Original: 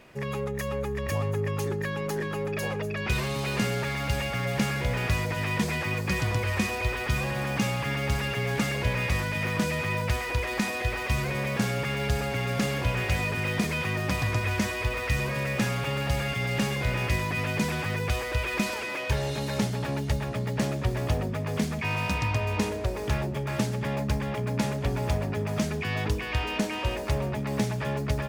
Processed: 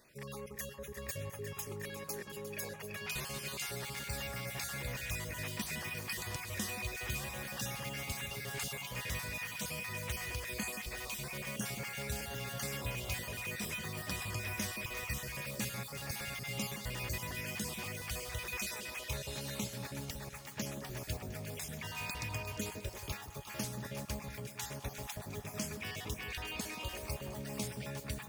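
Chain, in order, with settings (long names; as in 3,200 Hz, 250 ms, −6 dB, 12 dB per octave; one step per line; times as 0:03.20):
time-frequency cells dropped at random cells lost 30%
first-order pre-emphasis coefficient 0.8
delay that swaps between a low-pass and a high-pass 177 ms, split 1,400 Hz, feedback 72%, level −9 dB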